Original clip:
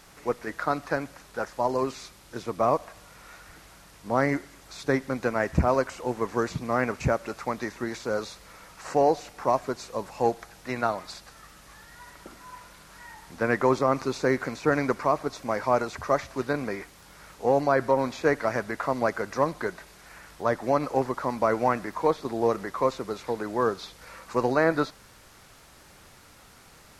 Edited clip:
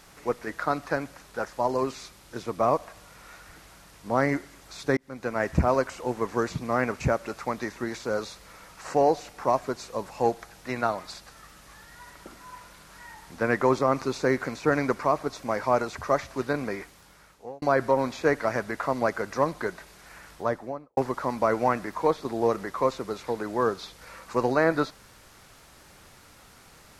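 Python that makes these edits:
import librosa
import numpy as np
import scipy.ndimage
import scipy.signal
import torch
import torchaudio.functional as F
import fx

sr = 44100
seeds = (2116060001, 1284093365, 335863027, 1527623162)

y = fx.studio_fade_out(x, sr, start_s=20.31, length_s=0.66)
y = fx.edit(y, sr, fx.fade_in_span(start_s=4.97, length_s=0.48),
    fx.fade_out_span(start_s=16.8, length_s=0.82), tone=tone)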